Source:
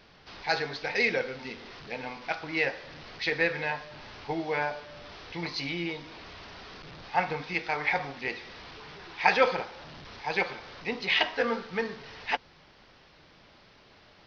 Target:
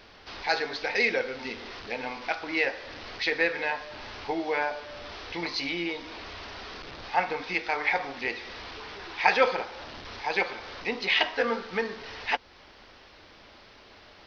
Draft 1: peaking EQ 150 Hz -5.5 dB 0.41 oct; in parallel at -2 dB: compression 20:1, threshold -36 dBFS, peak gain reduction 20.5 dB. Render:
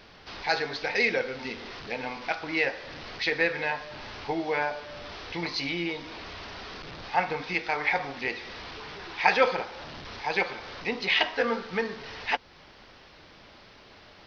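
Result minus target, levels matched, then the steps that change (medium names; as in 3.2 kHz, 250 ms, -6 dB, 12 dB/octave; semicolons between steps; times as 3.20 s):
125 Hz band +5.0 dB
change: peaking EQ 150 Hz -16.5 dB 0.41 oct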